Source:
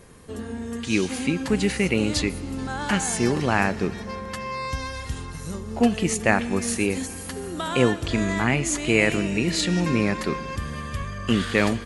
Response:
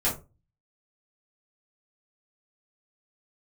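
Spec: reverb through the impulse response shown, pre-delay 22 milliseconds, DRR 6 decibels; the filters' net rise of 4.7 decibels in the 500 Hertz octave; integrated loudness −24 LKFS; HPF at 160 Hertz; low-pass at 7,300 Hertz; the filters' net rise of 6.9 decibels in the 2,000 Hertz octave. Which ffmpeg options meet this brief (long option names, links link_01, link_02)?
-filter_complex "[0:a]highpass=160,lowpass=7300,equalizer=frequency=500:width_type=o:gain=5.5,equalizer=frequency=2000:width_type=o:gain=8,asplit=2[link_01][link_02];[1:a]atrim=start_sample=2205,adelay=22[link_03];[link_02][link_03]afir=irnorm=-1:irlink=0,volume=-16dB[link_04];[link_01][link_04]amix=inputs=2:normalize=0,volume=-4dB"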